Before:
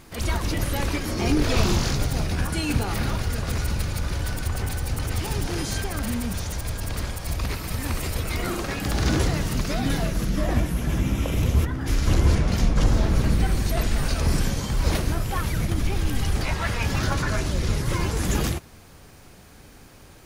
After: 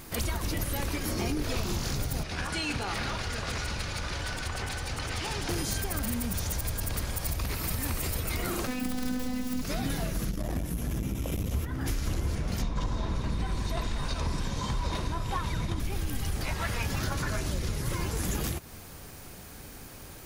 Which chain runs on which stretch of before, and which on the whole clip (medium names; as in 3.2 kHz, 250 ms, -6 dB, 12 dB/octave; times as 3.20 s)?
2.23–5.49 s: low-pass 5.4 kHz + bass shelf 440 Hz -11 dB
8.67–9.62 s: self-modulated delay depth 0.17 ms + peaking EQ 150 Hz +12.5 dB 1.3 oct + robot voice 252 Hz
10.31–11.52 s: peaking EQ 1.7 kHz -4.5 dB 2.4 oct + transformer saturation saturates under 200 Hz
12.62–15.80 s: low-pass 6.3 kHz + small resonant body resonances 1/3.7 kHz, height 14 dB, ringing for 40 ms
whole clip: treble shelf 11 kHz +12 dB; compression, threshold -29 dBFS; trim +1.5 dB